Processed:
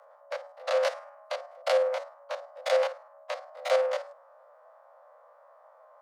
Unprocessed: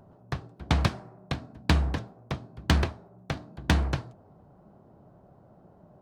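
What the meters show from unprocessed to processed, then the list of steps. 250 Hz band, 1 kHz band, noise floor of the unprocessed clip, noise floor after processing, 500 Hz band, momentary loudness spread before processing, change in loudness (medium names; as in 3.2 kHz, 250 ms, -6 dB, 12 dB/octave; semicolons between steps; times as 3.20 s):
under -40 dB, +1.0 dB, -57 dBFS, -57 dBFS, +12.5 dB, 12 LU, -0.5 dB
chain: spectrogram pixelated in time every 50 ms; frequency shift +450 Hz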